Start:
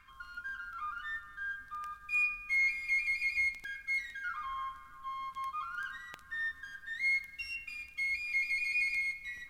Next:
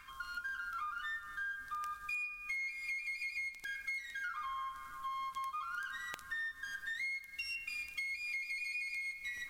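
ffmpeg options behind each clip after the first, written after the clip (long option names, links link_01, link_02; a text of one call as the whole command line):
ffmpeg -i in.wav -af "bass=frequency=250:gain=-5,treble=frequency=4000:gain=6,acompressor=threshold=-43dB:ratio=12,volume=5dB" out.wav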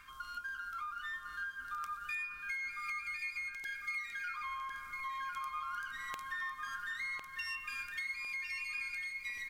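ffmpeg -i in.wav -filter_complex "[0:a]asplit=2[link_01][link_02];[link_02]adelay=1053,lowpass=frequency=3300:poles=1,volume=-3.5dB,asplit=2[link_03][link_04];[link_04]adelay=1053,lowpass=frequency=3300:poles=1,volume=0.45,asplit=2[link_05][link_06];[link_06]adelay=1053,lowpass=frequency=3300:poles=1,volume=0.45,asplit=2[link_07][link_08];[link_08]adelay=1053,lowpass=frequency=3300:poles=1,volume=0.45,asplit=2[link_09][link_10];[link_10]adelay=1053,lowpass=frequency=3300:poles=1,volume=0.45,asplit=2[link_11][link_12];[link_12]adelay=1053,lowpass=frequency=3300:poles=1,volume=0.45[link_13];[link_01][link_03][link_05][link_07][link_09][link_11][link_13]amix=inputs=7:normalize=0,volume=-1dB" out.wav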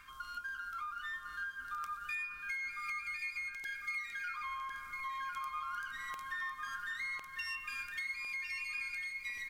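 ffmpeg -i in.wav -af "asoftclip=type=hard:threshold=-31.5dB" out.wav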